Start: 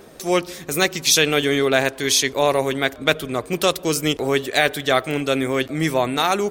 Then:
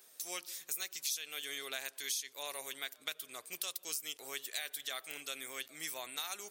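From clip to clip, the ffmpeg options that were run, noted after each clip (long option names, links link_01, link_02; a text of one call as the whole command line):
ffmpeg -i in.wav -af "aderivative,acompressor=threshold=-30dB:ratio=5,volume=-6dB" out.wav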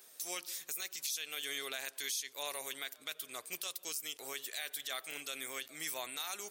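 ffmpeg -i in.wav -af "alimiter=level_in=6dB:limit=-24dB:level=0:latency=1:release=12,volume=-6dB,volume=2.5dB" out.wav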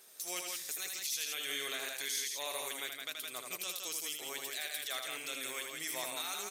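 ffmpeg -i in.wav -filter_complex "[0:a]asplit=2[link_01][link_02];[link_02]aecho=0:1:78.72|166.2:0.562|0.631[link_03];[link_01][link_03]amix=inputs=2:normalize=0,aresample=32000,aresample=44100" out.wav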